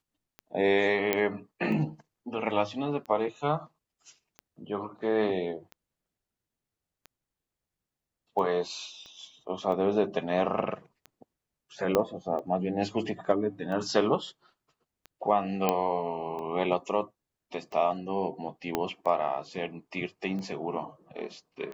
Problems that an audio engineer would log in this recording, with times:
tick 45 rpm -28 dBFS
1.13 s: pop -11 dBFS
9.06 s: pop -35 dBFS
11.95 s: pop -10 dBFS
15.69 s: pop -10 dBFS
18.75 s: pop -12 dBFS

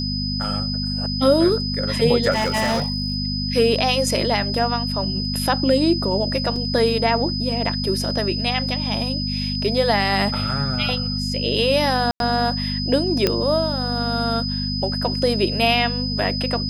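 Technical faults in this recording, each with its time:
hum 50 Hz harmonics 5 -26 dBFS
whine 5 kHz -26 dBFS
2.31–3.16 s: clipped -16.5 dBFS
6.56 s: dropout 2.8 ms
12.11–12.20 s: dropout 92 ms
13.27 s: pop -4 dBFS

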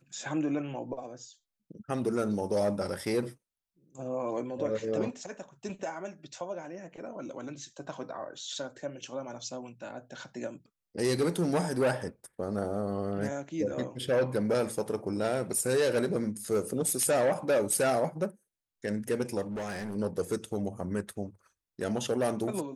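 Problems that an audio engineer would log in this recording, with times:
19.46–19.96 s: clipped -32.5 dBFS

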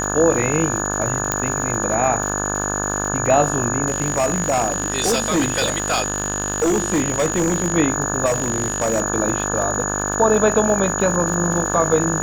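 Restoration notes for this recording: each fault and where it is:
buzz 50 Hz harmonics 35 -25 dBFS
crackle 240 per s -27 dBFS
whine 6.8 kHz -24 dBFS
1.32 s: pop -3 dBFS
3.88–7.75 s: clipped -14 dBFS
8.25–9.02 s: clipped -15 dBFS

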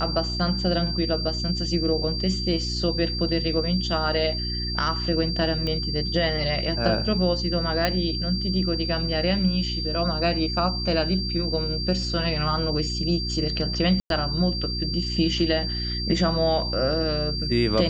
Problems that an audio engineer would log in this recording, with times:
hum 60 Hz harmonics 6 -30 dBFS
whine 4.7 kHz -29 dBFS
5.67 s: pop -17 dBFS
7.85 s: pop -7 dBFS
14.00–14.10 s: dropout 102 ms

